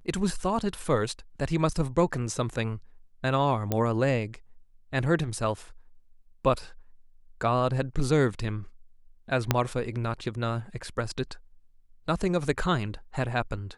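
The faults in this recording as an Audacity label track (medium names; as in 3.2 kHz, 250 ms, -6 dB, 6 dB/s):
3.720000	3.720000	pop -12 dBFS
9.510000	9.510000	pop -6 dBFS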